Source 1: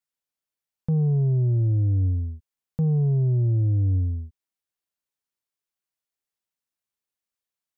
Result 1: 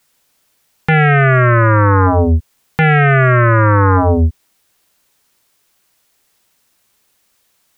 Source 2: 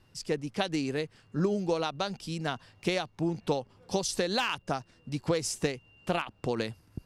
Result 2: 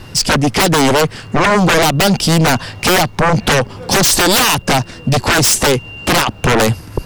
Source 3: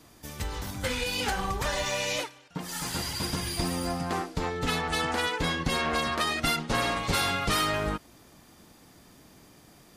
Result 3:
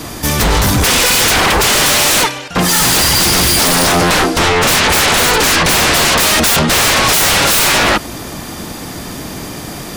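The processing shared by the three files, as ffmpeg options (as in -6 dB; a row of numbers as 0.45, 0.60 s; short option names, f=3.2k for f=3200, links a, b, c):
-af "aeval=exprs='0.2*sin(PI/2*8.91*val(0)/0.2)':c=same,volume=6dB"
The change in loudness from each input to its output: +11.5, +19.5, +19.5 LU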